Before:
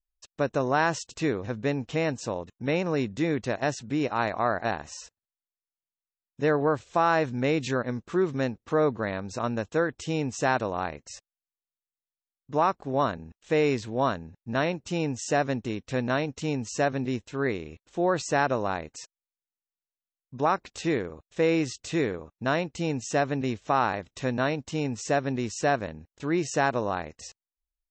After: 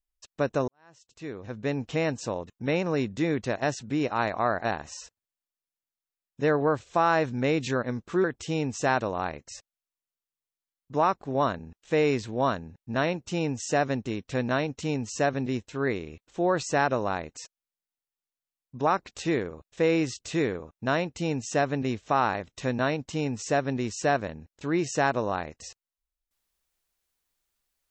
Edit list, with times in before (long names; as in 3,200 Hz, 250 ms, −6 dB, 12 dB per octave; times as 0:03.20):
0:00.68–0:01.79: fade in quadratic
0:08.24–0:09.83: remove